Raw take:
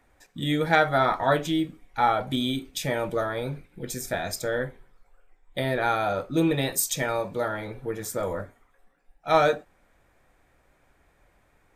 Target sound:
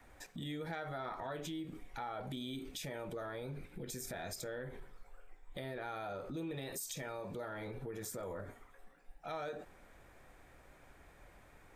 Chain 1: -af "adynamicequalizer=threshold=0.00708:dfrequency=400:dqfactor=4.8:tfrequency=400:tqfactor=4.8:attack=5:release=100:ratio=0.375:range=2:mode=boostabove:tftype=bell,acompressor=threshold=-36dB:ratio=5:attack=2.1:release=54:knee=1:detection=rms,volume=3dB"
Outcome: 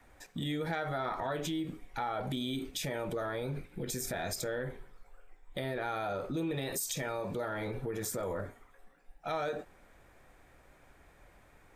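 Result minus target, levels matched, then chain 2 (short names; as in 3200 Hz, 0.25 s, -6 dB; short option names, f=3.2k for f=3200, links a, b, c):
compressor: peak gain reduction -7 dB
-af "adynamicequalizer=threshold=0.00708:dfrequency=400:dqfactor=4.8:tfrequency=400:tqfactor=4.8:attack=5:release=100:ratio=0.375:range=2:mode=boostabove:tftype=bell,acompressor=threshold=-45dB:ratio=5:attack=2.1:release=54:knee=1:detection=rms,volume=3dB"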